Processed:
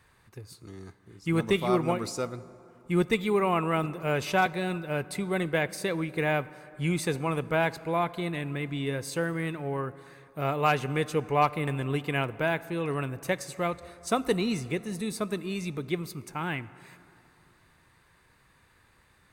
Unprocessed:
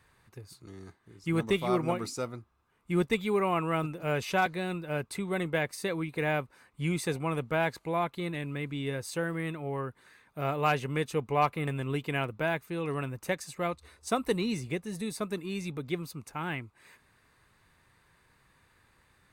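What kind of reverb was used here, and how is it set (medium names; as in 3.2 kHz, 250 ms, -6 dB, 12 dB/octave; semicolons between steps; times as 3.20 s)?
plate-style reverb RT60 3.2 s, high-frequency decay 0.45×, DRR 17 dB; trim +2.5 dB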